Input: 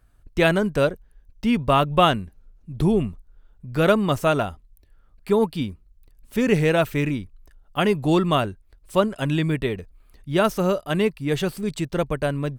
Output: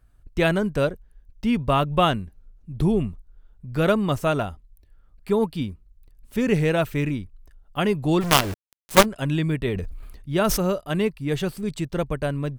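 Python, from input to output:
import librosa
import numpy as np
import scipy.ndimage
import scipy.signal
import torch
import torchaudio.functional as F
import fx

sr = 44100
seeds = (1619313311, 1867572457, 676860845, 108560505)

y = fx.quant_companded(x, sr, bits=2, at=(8.2, 9.04), fade=0.02)
y = fx.low_shelf(y, sr, hz=180.0, db=4.5)
y = fx.sustainer(y, sr, db_per_s=38.0, at=(9.65, 10.6))
y = y * librosa.db_to_amplitude(-3.0)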